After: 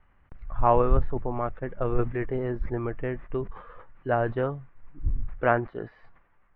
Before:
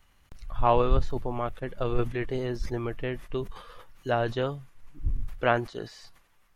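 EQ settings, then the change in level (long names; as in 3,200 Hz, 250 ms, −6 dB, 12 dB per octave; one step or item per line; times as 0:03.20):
low-pass filter 2,000 Hz 24 dB per octave
+1.5 dB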